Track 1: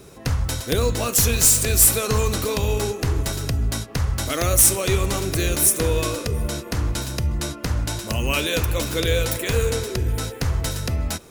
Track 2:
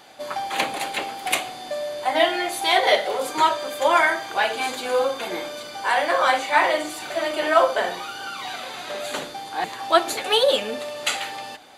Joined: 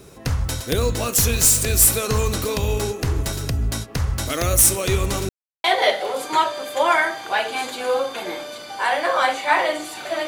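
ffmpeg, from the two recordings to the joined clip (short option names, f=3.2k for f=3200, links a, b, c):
-filter_complex "[0:a]apad=whole_dur=10.27,atrim=end=10.27,asplit=2[a][b];[a]atrim=end=5.29,asetpts=PTS-STARTPTS,afade=t=out:st=5.286:d=0.004:c=hsin[c];[b]atrim=start=5.29:end=5.64,asetpts=PTS-STARTPTS,volume=0[d];[1:a]atrim=start=2.69:end=7.32,asetpts=PTS-STARTPTS,afade=t=in:d=0.004:c=hsin[e];[c][d][e]concat=n=3:v=0:a=1"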